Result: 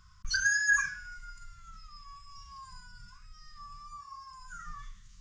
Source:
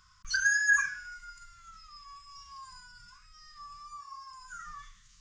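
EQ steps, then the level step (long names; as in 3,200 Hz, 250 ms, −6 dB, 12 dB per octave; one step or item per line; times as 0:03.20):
low-shelf EQ 430 Hz +11.5 dB
dynamic equaliser 4,900 Hz, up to +5 dB, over −42 dBFS, Q 1.3
−2.5 dB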